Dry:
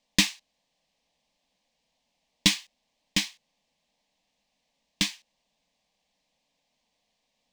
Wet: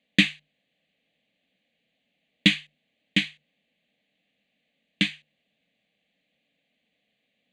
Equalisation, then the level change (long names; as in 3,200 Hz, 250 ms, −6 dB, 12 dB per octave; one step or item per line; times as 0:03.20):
band-pass filter 110–4,400 Hz
mains-hum notches 50/100/150 Hz
phaser with its sweep stopped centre 2,300 Hz, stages 4
+6.5 dB